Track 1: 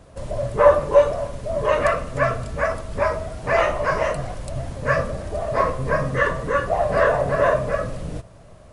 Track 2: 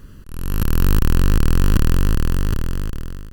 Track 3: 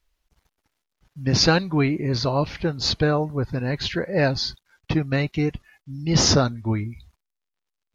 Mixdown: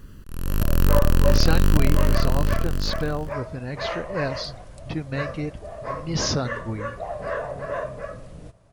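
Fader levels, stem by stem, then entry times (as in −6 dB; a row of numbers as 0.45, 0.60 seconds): −11.0, −2.5, −7.0 decibels; 0.30, 0.00, 0.00 seconds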